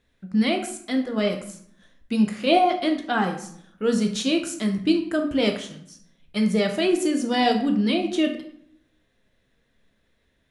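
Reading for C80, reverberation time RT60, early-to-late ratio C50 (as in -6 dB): 12.0 dB, 0.65 s, 8.5 dB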